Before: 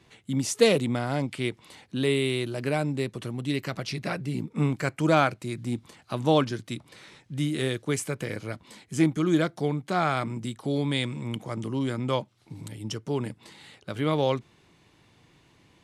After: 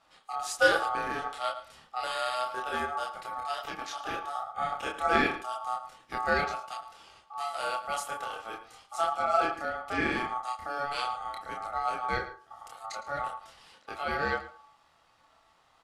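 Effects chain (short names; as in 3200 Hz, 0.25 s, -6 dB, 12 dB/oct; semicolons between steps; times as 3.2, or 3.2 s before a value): chorus voices 4, 0.13 Hz, delay 28 ms, depth 4.4 ms; outdoor echo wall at 19 m, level -15 dB; on a send at -7 dB: reverb RT60 0.40 s, pre-delay 4 ms; on the sum: ring modulator 1000 Hz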